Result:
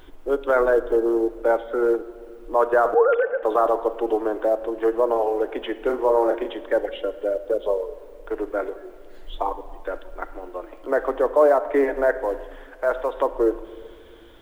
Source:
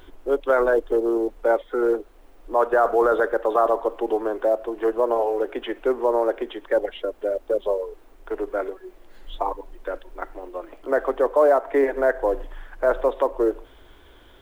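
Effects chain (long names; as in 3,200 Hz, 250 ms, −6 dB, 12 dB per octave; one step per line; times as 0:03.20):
0:02.94–0:03.43: three sine waves on the formant tracks
0:05.79–0:06.49: double-tracking delay 32 ms −5 dB
0:12.17–0:13.16: low-shelf EQ 420 Hz −9.5 dB
convolution reverb RT60 1.9 s, pre-delay 6 ms, DRR 11.5 dB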